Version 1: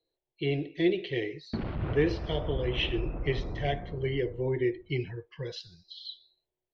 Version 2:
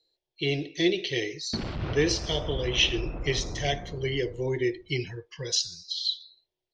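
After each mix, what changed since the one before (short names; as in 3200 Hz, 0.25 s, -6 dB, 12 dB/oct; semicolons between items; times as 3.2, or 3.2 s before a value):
master: remove air absorption 450 m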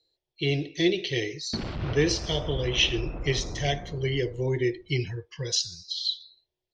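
speech: add bell 80 Hz +8 dB 1.7 oct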